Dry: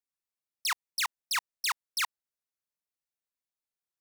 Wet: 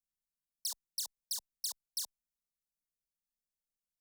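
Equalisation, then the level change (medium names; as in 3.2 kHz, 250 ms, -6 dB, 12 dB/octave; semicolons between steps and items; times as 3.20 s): Butterworth band-stop 2.3 kHz, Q 0.81; amplifier tone stack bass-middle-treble 10-0-1; static phaser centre 350 Hz, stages 6; +18.0 dB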